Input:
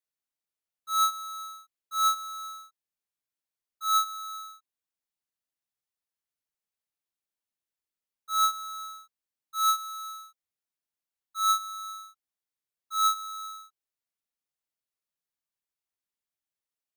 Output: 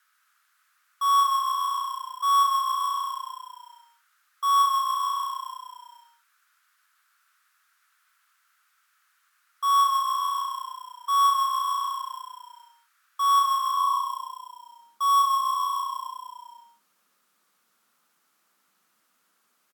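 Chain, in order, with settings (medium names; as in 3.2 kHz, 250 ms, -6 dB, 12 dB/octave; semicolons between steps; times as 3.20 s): peaking EQ 1.5 kHz +13 dB 0.66 oct; on a send: frequency-shifting echo 125 ms, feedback 47%, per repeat -35 Hz, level -6 dB; on the sum: tape speed -14%; high-pass sweep 1.5 kHz -> 200 Hz, 13.72–14.74 s; three bands compressed up and down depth 70%; trim -2 dB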